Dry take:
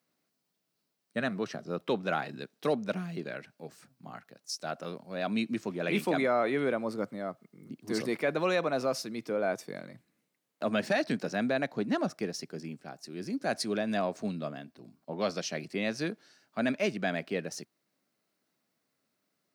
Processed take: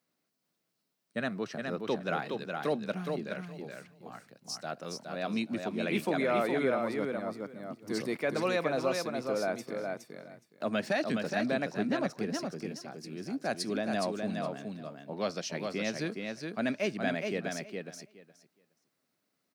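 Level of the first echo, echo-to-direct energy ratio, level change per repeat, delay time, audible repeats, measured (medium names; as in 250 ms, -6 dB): -4.5 dB, -4.5 dB, -16.0 dB, 417 ms, 2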